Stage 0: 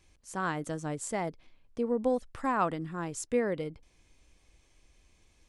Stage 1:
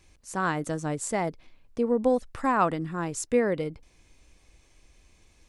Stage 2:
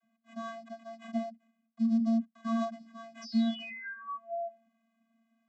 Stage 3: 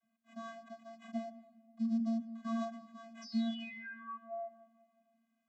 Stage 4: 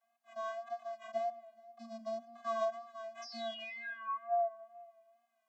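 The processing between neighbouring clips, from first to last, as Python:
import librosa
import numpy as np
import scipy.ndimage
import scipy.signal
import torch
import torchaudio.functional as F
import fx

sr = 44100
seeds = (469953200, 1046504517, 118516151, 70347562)

y1 = fx.notch(x, sr, hz=3200.0, q=21.0)
y1 = y1 * librosa.db_to_amplitude(5.0)
y2 = fx.sample_hold(y1, sr, seeds[0], rate_hz=4900.0, jitter_pct=20)
y2 = fx.spec_paint(y2, sr, seeds[1], shape='fall', start_s=3.21, length_s=1.45, low_hz=410.0, high_hz=5600.0, level_db=-27.0)
y2 = fx.vocoder(y2, sr, bands=32, carrier='square', carrier_hz=227.0)
y2 = y2 * librosa.db_to_amplitude(-6.0)
y3 = fx.room_shoebox(y2, sr, seeds[2], volume_m3=2400.0, walls='mixed', distance_m=0.44)
y3 = y3 * librosa.db_to_amplitude(-4.5)
y4 = fx.wow_flutter(y3, sr, seeds[3], rate_hz=2.1, depth_cents=44.0)
y4 = fx.highpass_res(y4, sr, hz=770.0, q=3.6)
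y4 = y4 + 10.0 ** (-24.0 / 20.0) * np.pad(y4, (int(425 * sr / 1000.0), 0))[:len(y4)]
y4 = y4 * librosa.db_to_amplitude(2.0)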